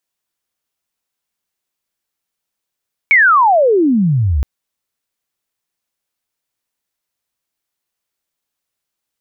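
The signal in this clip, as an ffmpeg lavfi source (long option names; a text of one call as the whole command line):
ffmpeg -f lavfi -i "aevalsrc='pow(10,(-5.5-6*t/1.32)/20)*sin(2*PI*2300*1.32/log(63/2300)*(exp(log(63/2300)*t/1.32)-1))':duration=1.32:sample_rate=44100" out.wav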